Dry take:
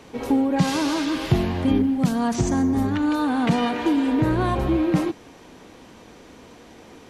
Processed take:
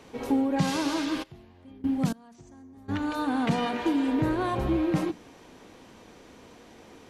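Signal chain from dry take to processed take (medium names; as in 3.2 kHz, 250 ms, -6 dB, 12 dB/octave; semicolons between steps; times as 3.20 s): hum notches 60/120/180/240/300 Hz; 1.22–2.88 s: trance gate "....xx..." 106 bpm -24 dB; trim -4.5 dB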